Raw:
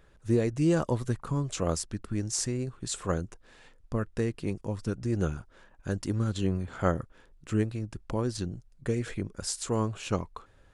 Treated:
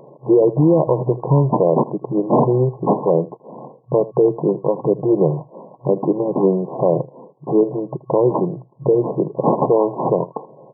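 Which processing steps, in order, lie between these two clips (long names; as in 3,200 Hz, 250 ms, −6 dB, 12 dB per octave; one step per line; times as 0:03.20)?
low-shelf EQ 180 Hz −3 dB
phaser with its sweep stopped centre 560 Hz, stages 4
in parallel at −2 dB: downward compressor, threshold −45 dBFS, peak gain reduction 19.5 dB
on the sum: decimation without filtering 23×
brick-wall band-pass 120–1,100 Hz
pitch vibrato 1.1 Hz 9.4 cents
on a send: single-tap delay 80 ms −19.5 dB
on the sum: boost into a limiter +26 dB
level −4.5 dB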